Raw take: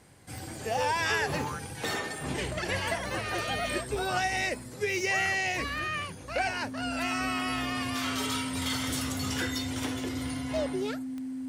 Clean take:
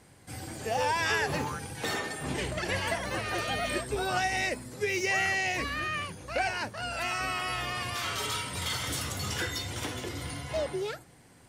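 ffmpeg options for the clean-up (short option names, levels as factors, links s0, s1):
-af "adeclick=t=4,bandreject=f=260:w=30"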